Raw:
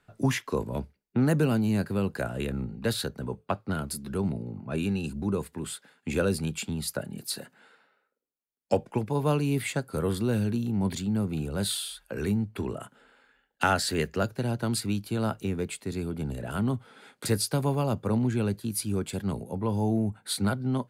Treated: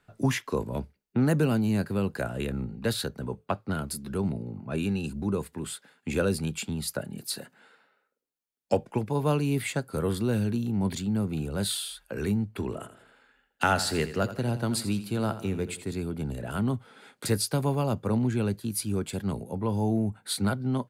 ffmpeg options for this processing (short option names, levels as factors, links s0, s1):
-filter_complex "[0:a]asplit=3[s0][s1][s2];[s0]afade=t=out:st=12.71:d=0.02[s3];[s1]aecho=1:1:83|166|249|332:0.224|0.0963|0.0414|0.0178,afade=t=in:st=12.71:d=0.02,afade=t=out:st=15.93:d=0.02[s4];[s2]afade=t=in:st=15.93:d=0.02[s5];[s3][s4][s5]amix=inputs=3:normalize=0"